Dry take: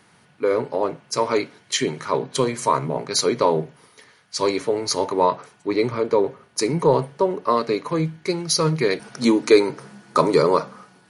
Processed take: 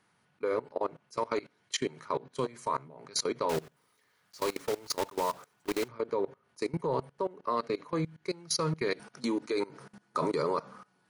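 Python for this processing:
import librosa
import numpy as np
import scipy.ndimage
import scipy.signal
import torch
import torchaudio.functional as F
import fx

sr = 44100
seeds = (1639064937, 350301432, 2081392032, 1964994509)

y = fx.block_float(x, sr, bits=3, at=(3.49, 5.89))
y = fx.peak_eq(y, sr, hz=1200.0, db=3.0, octaves=1.1)
y = fx.level_steps(y, sr, step_db=21)
y = y * 10.0 ** (-8.0 / 20.0)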